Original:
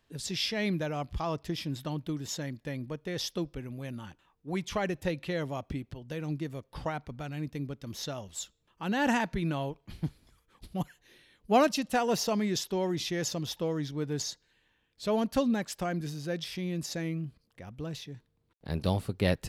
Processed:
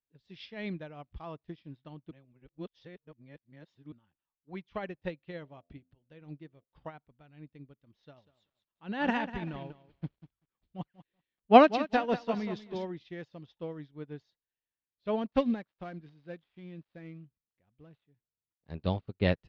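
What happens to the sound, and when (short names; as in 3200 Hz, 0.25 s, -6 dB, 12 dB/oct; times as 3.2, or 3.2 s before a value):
2.11–3.92 reverse
5.4–6.64 de-hum 85.53 Hz, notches 8
7.97–12.85 lo-fi delay 0.193 s, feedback 35%, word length 8-bit, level -6 dB
15.32–18.73 switching dead time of 0.1 ms
whole clip: LPF 3800 Hz 24 dB/oct; upward expander 2.5:1, over -44 dBFS; gain +8 dB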